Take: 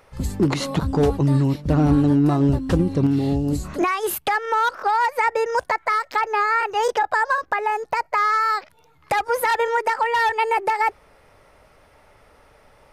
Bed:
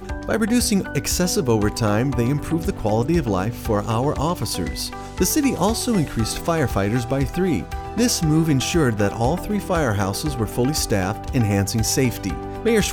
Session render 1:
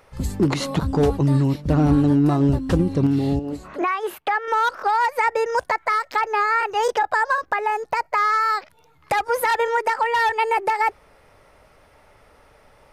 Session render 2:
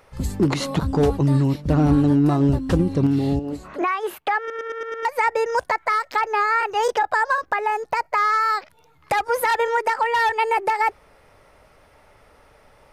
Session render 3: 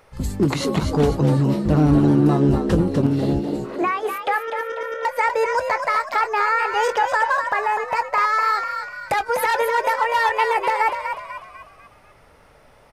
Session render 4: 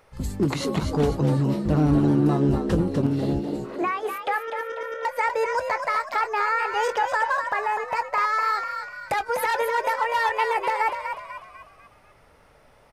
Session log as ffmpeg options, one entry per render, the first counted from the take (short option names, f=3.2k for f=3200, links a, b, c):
-filter_complex "[0:a]asettb=1/sr,asplit=3[a][b][c];[a]atrim=end=3.394[d];[b]atrim=start=3.39:end=4.48,asetpts=PTS-STARTPTS,afade=t=in:d=0.004:c=qsin,afade=t=out:st=1.086:d=0.004:c=qsin,bass=f=250:g=-15,treble=f=4k:g=-15[e];[c]atrim=start=4.476[f];[d][e]acrossfade=d=0.004:c1=hsin:c2=qsin[g];[g][f]acrossfade=d=0.004:c1=qsin:c2=hsin"
-filter_complex "[0:a]asplit=7[a][b][c][d][e][f][g];[a]atrim=end=4.502[h];[b]atrim=start=4.388:end=4.502[i];[c]atrim=start=4.388:end=4.502[j];[d]atrim=start=4.388:end=4.502[k];[e]atrim=start=4.388:end=4.502[l];[f]atrim=start=4.388:end=4.502[m];[g]atrim=start=5.048[n];[h][i]acrossfade=d=0.004:c1=hsin:c2=hsin[o];[o][j]acrossfade=d=0.004:c1=hsin:c2=hsin[p];[p][k]acrossfade=d=0.004:c1=hsin:c2=hsin[q];[q][l]acrossfade=d=0.004:c1=hsin:c2=hsin[r];[r][m]acrossfade=d=0.004:c1=hsin:c2=hsin[s];[s][n]acrossfade=d=0.004:c1=hsin:c2=hsin"
-filter_complex "[0:a]asplit=2[a][b];[b]adelay=20,volume=-13dB[c];[a][c]amix=inputs=2:normalize=0,asplit=6[d][e][f][g][h][i];[e]adelay=247,afreqshift=68,volume=-7dB[j];[f]adelay=494,afreqshift=136,volume=-14.3dB[k];[g]adelay=741,afreqshift=204,volume=-21.7dB[l];[h]adelay=988,afreqshift=272,volume=-29dB[m];[i]adelay=1235,afreqshift=340,volume=-36.3dB[n];[d][j][k][l][m][n]amix=inputs=6:normalize=0"
-af "volume=-4dB"